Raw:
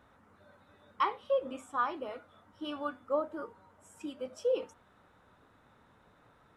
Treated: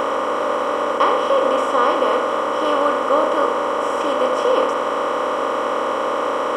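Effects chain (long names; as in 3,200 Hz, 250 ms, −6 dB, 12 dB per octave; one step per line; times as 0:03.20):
compressor on every frequency bin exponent 0.2
level +7.5 dB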